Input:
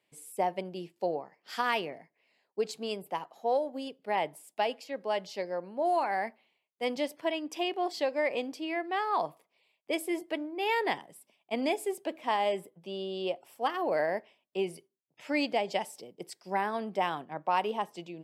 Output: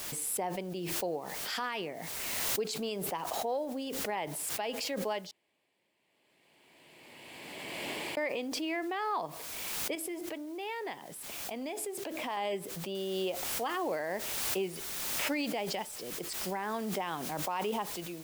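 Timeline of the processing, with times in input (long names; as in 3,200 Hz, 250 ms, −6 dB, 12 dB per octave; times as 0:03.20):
0:05.31–0:08.17: fill with room tone
0:09.95–0:12.37: downward compressor 2 to 1, threshold −42 dBFS
0:12.95: noise floor change −64 dB −53 dB
whole clip: dynamic equaliser 650 Hz, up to −4 dB, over −38 dBFS, Q 2.2; brickwall limiter −25 dBFS; background raised ahead of every attack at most 21 dB per second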